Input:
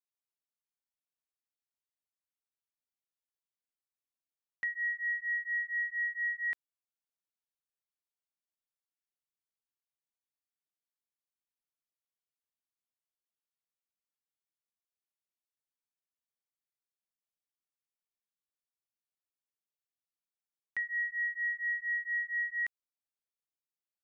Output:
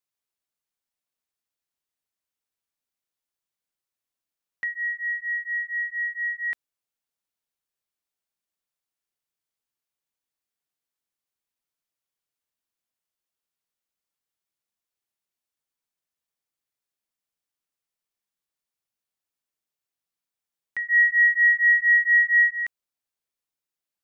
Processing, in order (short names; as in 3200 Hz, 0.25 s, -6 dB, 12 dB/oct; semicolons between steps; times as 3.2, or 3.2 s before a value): 20.88–22.51 bell 2000 Hz +12 dB 0.43 oct; gain +5.5 dB